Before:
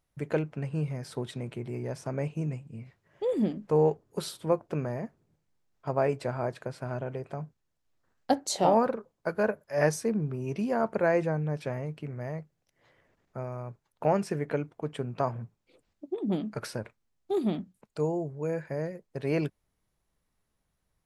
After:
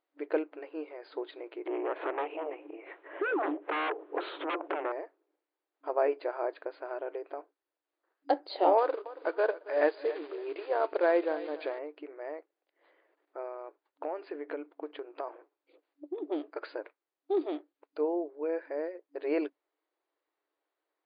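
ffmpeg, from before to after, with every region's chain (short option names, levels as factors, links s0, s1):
-filter_complex "[0:a]asettb=1/sr,asplit=3[s0][s1][s2];[s0]atrim=end=1.664[s3];[s1]atrim=start=1.66:end=4.92,asetpts=PTS-STARTPTS,afade=t=in:d=0.004:c=qsin,afade=t=out:st=3.256:d=0.004:c=qsin,aeval=exprs='0.237*sin(PI/2*7.94*val(0)/0.237)':c=same,asuperstop=centerf=5200:order=4:qfactor=0.9,acompressor=threshold=0.0447:ratio=16:attack=3.2:release=140:knee=1:detection=peak[s4];[s2]atrim=start=4.916[s5];[s3][s4]acrossfade=d=0.004:c1=hsin:c2=qsin[s6];[s6][s5]acrossfade=d=0.004:c1=qsin:c2=hsin,asettb=1/sr,asplit=3[s7][s8][s9];[s7]atrim=end=8.784[s10];[s8]atrim=start=8.78:end=11.79,asetpts=PTS-STARTPTS,afade=t=in:d=0.004:c=qsin,afade=t=out:st=3.006:d=0.004:c=qsin,acrusher=bits=4:mode=log:mix=0:aa=0.000001,acompressor=mode=upward:threshold=0.0447:ratio=2.5:attack=3.2:release=140:knee=2.83:detection=peak,aecho=1:1:277|554|831:0.15|0.0389|0.0101,atrim=end_sample=132741[s11];[s9]atrim=start=11.786[s12];[s10][s11]acrossfade=d=0.004:c1=hsin:c2=qsin[s13];[s13][s12]acrossfade=d=0.004:c1=qsin:c2=hsin,asettb=1/sr,asplit=3[s14][s15][s16];[s14]atrim=end=13.524[s17];[s15]atrim=start=13.52:end=16.3,asetpts=PTS-STARTPTS,afade=t=in:d=0.004:c=qsin,afade=t=out:st=2.776:d=0.004:c=qsin,lowpass=8600,acompressor=threshold=0.0282:ratio=4:attack=3.2:release=140:knee=1:detection=peak[s18];[s16]atrim=start=16.296[s19];[s17][s18]acrossfade=d=0.004:c1=hsin:c2=qsin[s20];[s20][s19]acrossfade=d=0.004:c1=qsin:c2=hsin,aemphasis=mode=reproduction:type=75fm,afftfilt=real='re*between(b*sr/4096,280,4900)':imag='im*between(b*sr/4096,280,4900)':win_size=4096:overlap=0.75,acontrast=25,volume=0.501"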